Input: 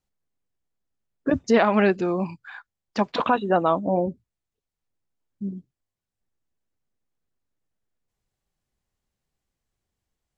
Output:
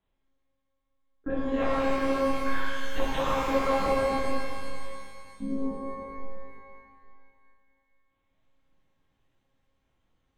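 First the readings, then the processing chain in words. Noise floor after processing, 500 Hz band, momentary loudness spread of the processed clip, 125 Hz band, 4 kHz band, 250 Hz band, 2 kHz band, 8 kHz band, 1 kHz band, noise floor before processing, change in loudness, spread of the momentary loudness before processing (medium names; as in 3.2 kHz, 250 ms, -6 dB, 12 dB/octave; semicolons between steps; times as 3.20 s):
-76 dBFS, -4.5 dB, 17 LU, -8.0 dB, -1.0 dB, -5.5 dB, -3.0 dB, no reading, -4.0 dB, under -85 dBFS, -6.5 dB, 15 LU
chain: compression 6:1, threshold -31 dBFS, peak gain reduction 16.5 dB; monotone LPC vocoder at 8 kHz 270 Hz; pitch-shifted reverb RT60 2.3 s, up +12 st, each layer -8 dB, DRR -7.5 dB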